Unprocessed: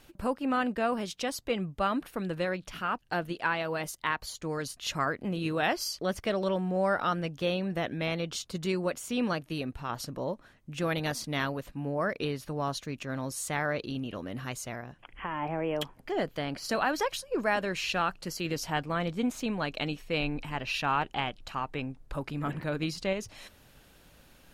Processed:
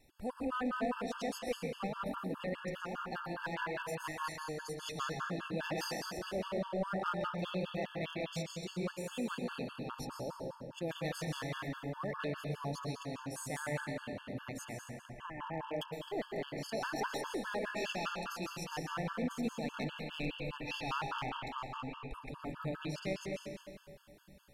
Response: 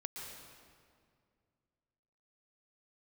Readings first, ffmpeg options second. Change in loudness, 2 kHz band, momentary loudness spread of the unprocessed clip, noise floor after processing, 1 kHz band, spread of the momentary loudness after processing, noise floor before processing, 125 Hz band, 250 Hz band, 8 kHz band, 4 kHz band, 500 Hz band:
−7.5 dB, −8.0 dB, 8 LU, −56 dBFS, −8.0 dB, 7 LU, −59 dBFS, −6.5 dB, −7.5 dB, −8.5 dB, −8.0 dB, −7.5 dB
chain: -filter_complex "[1:a]atrim=start_sample=2205[link_01];[0:a][link_01]afir=irnorm=-1:irlink=0,aeval=exprs='clip(val(0),-1,0.0422)':channel_layout=same,afftfilt=real='re*gt(sin(2*PI*4.9*pts/sr)*(1-2*mod(floor(b*sr/1024/880),2)),0)':imag='im*gt(sin(2*PI*4.9*pts/sr)*(1-2*mod(floor(b*sr/1024/880),2)),0)':win_size=1024:overlap=0.75,volume=-3dB"

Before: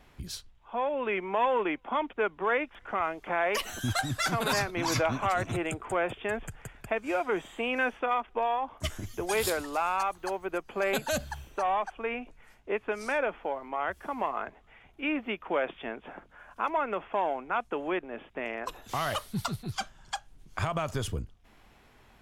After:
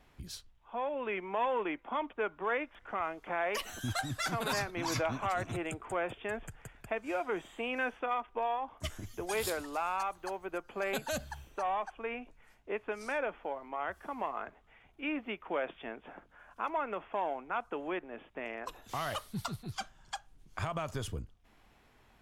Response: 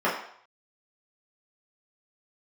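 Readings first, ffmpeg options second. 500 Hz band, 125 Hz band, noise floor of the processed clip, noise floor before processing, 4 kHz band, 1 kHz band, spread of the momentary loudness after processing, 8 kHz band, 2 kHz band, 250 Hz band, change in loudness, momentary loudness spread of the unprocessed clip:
−5.5 dB, −5.5 dB, −65 dBFS, −59 dBFS, −5.5 dB, −5.0 dB, 11 LU, −5.5 dB, −5.5 dB, −5.5 dB, −5.5 dB, 11 LU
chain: -filter_complex "[0:a]asplit=2[link_01][link_02];[1:a]atrim=start_sample=2205,asetrate=70560,aresample=44100,lowpass=1700[link_03];[link_02][link_03]afir=irnorm=-1:irlink=0,volume=-31.5dB[link_04];[link_01][link_04]amix=inputs=2:normalize=0,volume=-5.5dB"

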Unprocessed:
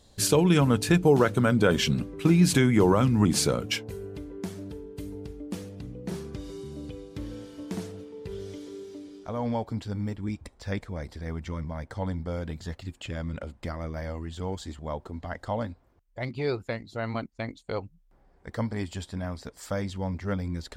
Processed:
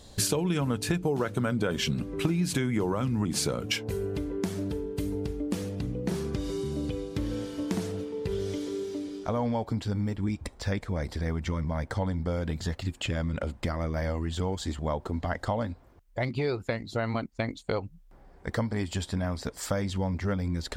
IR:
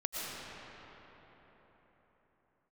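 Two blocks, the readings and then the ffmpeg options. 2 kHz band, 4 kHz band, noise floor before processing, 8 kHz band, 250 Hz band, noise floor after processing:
−2.0 dB, −1.5 dB, −62 dBFS, −2.0 dB, −3.0 dB, −54 dBFS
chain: -af "acompressor=threshold=-33dB:ratio=6,volume=7.5dB"

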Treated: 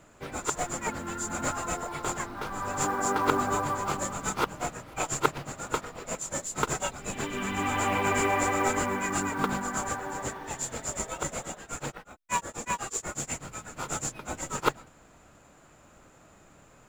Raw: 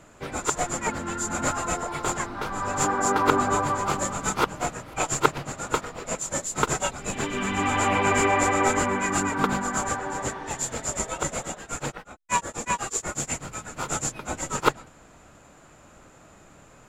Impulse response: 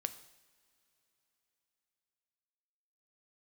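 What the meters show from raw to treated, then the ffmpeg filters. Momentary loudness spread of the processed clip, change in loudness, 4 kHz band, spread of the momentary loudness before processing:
10 LU, −4.5 dB, −4.5 dB, 10 LU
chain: -af "acrusher=bits=6:mode=log:mix=0:aa=0.000001,volume=-4.5dB"

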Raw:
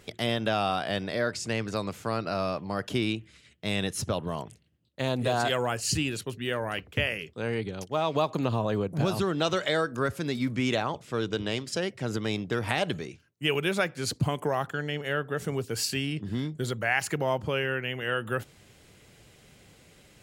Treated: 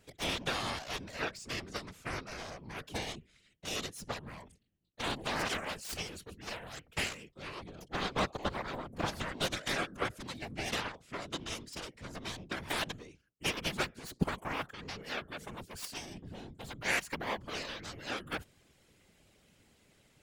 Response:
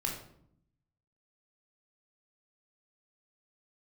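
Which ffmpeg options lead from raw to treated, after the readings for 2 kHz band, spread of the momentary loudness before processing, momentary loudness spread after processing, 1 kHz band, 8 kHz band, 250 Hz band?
−6.0 dB, 6 LU, 11 LU, −7.5 dB, −6.0 dB, −11.5 dB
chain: -af "aeval=exprs='0.299*(cos(1*acos(clip(val(0)/0.299,-1,1)))-cos(1*PI/2))+0.0668*(cos(7*acos(clip(val(0)/0.299,-1,1)))-cos(7*PI/2))':channel_layout=same,afftfilt=real='hypot(re,im)*cos(2*PI*random(0))':imag='hypot(re,im)*sin(2*PI*random(1))':win_size=512:overlap=0.75,volume=1dB"

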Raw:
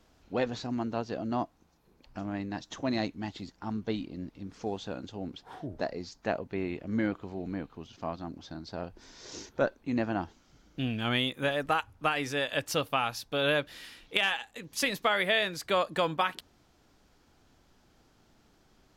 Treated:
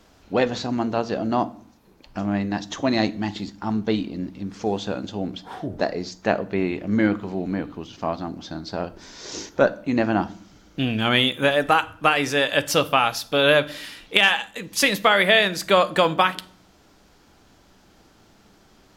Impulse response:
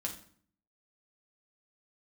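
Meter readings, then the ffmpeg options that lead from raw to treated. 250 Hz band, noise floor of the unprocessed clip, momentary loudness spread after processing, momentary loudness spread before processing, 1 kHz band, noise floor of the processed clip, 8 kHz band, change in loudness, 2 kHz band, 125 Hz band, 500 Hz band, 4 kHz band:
+9.5 dB, −65 dBFS, 15 LU, 14 LU, +10.0 dB, −56 dBFS, +10.0 dB, +10.0 dB, +10.0 dB, +8.5 dB, +10.0 dB, +10.5 dB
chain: -filter_complex "[0:a]lowshelf=frequency=120:gain=-4.5,asplit=2[link_01][link_02];[1:a]atrim=start_sample=2205[link_03];[link_02][link_03]afir=irnorm=-1:irlink=0,volume=-7.5dB[link_04];[link_01][link_04]amix=inputs=2:normalize=0,volume=7.5dB"

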